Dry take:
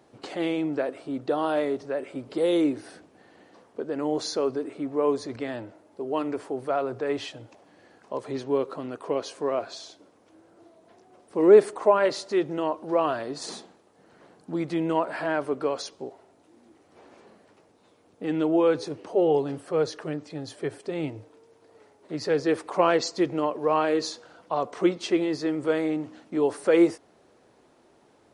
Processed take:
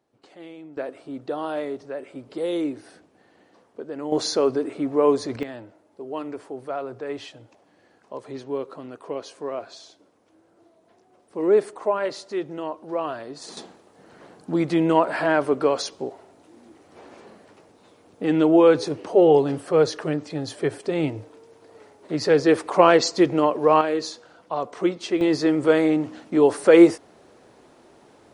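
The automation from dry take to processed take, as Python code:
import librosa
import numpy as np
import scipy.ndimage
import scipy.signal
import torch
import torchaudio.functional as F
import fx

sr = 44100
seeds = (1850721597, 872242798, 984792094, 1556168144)

y = fx.gain(x, sr, db=fx.steps((0.0, -14.5), (0.77, -3.0), (4.12, 5.5), (5.43, -3.5), (13.57, 6.5), (23.81, 0.0), (25.21, 7.0)))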